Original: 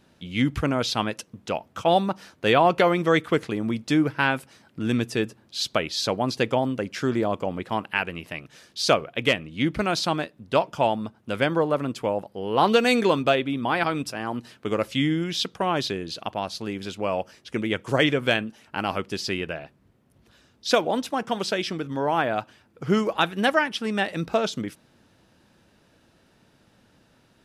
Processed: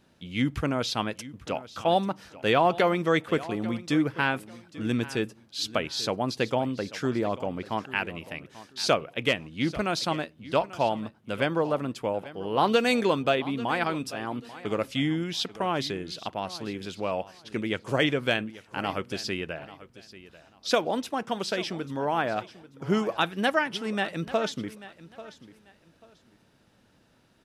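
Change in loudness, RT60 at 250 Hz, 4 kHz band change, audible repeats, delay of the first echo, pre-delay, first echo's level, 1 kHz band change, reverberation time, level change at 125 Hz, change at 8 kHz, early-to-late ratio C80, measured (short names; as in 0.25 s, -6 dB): -3.5 dB, none, -3.5 dB, 2, 0.84 s, none, -17.0 dB, -3.5 dB, none, -3.5 dB, -3.5 dB, none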